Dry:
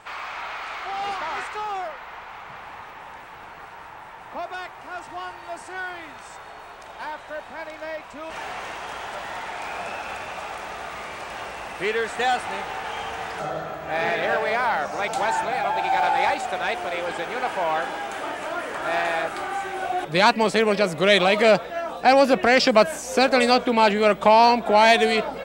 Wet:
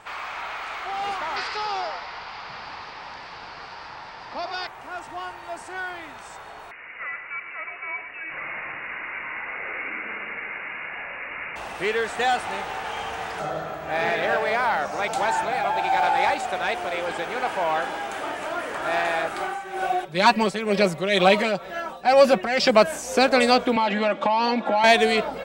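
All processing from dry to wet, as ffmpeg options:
-filter_complex "[0:a]asettb=1/sr,asplit=3[a][b][c];[a]atrim=end=1.364[d];[b]atrim=start=1.36:end=4.67,asetpts=PTS-STARTPTS,afade=t=in:d=0.004:c=qsin,afade=t=out:st=3.306:d=0.004:c=qsin,lowpass=f=4.8k:t=q:w=7.9,asplit=7[e][f][g][h][i][j][k];[f]adelay=89,afreqshift=68,volume=-8dB[l];[g]adelay=178,afreqshift=136,volume=-13.4dB[m];[h]adelay=267,afreqshift=204,volume=-18.7dB[n];[i]adelay=356,afreqshift=272,volume=-24.1dB[o];[j]adelay=445,afreqshift=340,volume=-29.4dB[p];[k]adelay=534,afreqshift=408,volume=-34.8dB[q];[e][l][m][n][o][p][q]amix=inputs=7:normalize=0,atrim=end_sample=145971[r];[c]atrim=start=4.666[s];[d][r]acrossfade=d=0.004:c1=hsin:c2=qsin[t];[t][s]acrossfade=d=0.004:c1=qsin:c2=hsin,asettb=1/sr,asplit=3[u][v][w];[u]atrim=end=6.714[x];[v]atrim=start=6.71:end=11.56,asetpts=PTS-STARTPTS,afade=t=in:d=0.004:c=qsin,afade=t=out:st=4.846:d=0.004:c=qsin,aecho=1:1:112:0.335,atrim=end_sample=213885,lowpass=f=2.5k:t=q:w=0.5098,lowpass=f=2.5k:t=q:w=0.6013,lowpass=f=2.5k:t=q:w=0.9,lowpass=f=2.5k:t=q:w=2.563,afreqshift=-2900[y];[w]atrim=start=11.556[z];[x][y]acrossfade=d=0.004:c1=hsin:c2=qsin[aa];[aa][z]acrossfade=d=0.004:c1=qsin:c2=hsin,asettb=1/sr,asplit=3[ab][ac][ad];[ab]atrim=end=19.404[ae];[ac]atrim=start=19.4:end=22.7,asetpts=PTS-STARTPTS,afade=t=in:d=0.004:c=qsin,afade=t=out:st=3.296:d=0.004:c=qsin,aecho=1:1:5.3:0.63,atrim=end_sample=145530,tremolo=f=2.1:d=0.67[af];[ad]atrim=start=22.696[ag];[ae][af]acrossfade=d=0.004:c1=hsin:c2=qsin[ah];[ah][ag]acrossfade=d=0.004:c1=qsin:c2=hsin,asettb=1/sr,asplit=3[ai][aj][ak];[ai]atrim=end=23.764[al];[aj]atrim=start=23.76:end=24.84,asetpts=PTS-STARTPTS,afade=t=in:d=0.004:c=qsin,afade=t=out:st=1.076:d=0.004:c=qsin,aecho=1:1:3.6:0.76,atrim=end_sample=47628,acompressor=threshold=-17dB:ratio=6:attack=3.2:release=140:knee=1:detection=peak,highpass=180,lowpass=4.5k[am];[ak]atrim=start=24.836[an];[al][am]acrossfade=d=0.004:c1=hsin:c2=qsin[ao];[ao][an]acrossfade=d=0.004:c1=qsin:c2=hsin"

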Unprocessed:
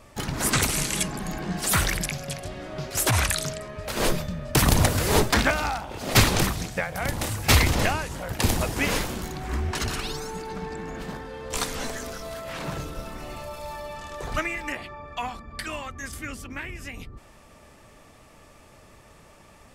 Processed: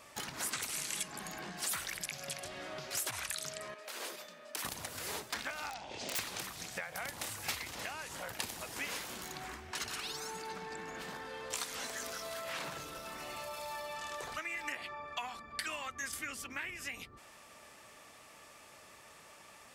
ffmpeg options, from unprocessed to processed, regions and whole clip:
-filter_complex "[0:a]asettb=1/sr,asplit=3[a][b][c];[a]atrim=end=3.744[d];[b]atrim=start=3.74:end=4.65,asetpts=PTS-STARTPTS,afade=t=in:d=0.004:c=qsin,afade=t=out:st=0.906:d=0.004:c=qsin,agate=range=-8dB:threshold=-25dB:ratio=16:release=100:detection=peak,highpass=f=260:w=0.5412,highpass=f=260:w=1.3066,acompressor=threshold=-38dB:ratio=4:attack=3.2:release=140:knee=1:detection=peak[e];[c]atrim=start=4.646[f];[d][e]acrossfade=d=0.004:c1=hsin:c2=qsin[g];[g][f]acrossfade=d=0.004:c1=qsin:c2=hsin,asettb=1/sr,asplit=3[h][i][j];[h]atrim=end=5.704[k];[i]atrim=start=5.7:end=6.19,asetpts=PTS-STARTPTS,afade=t=in:d=0.004:c=qsin,afade=t=out:st=0.486:d=0.004:c=qsin,lowpass=f=6.9k:w=0.5412,lowpass=f=6.9k:w=1.3066,equalizer=f=1.3k:t=o:w=0.72:g=-12.5,aeval=exprs='(mod(11.9*val(0)+1,2)-1)/11.9':c=same[l];[j]atrim=start=6.186[m];[k][l]acrossfade=d=0.004:c1=hsin:c2=qsin[n];[n][m]acrossfade=d=0.004:c1=qsin:c2=hsin,acompressor=threshold=-33dB:ratio=12,highpass=f=170:p=1,tiltshelf=f=670:g=-5.5,volume=-5dB"

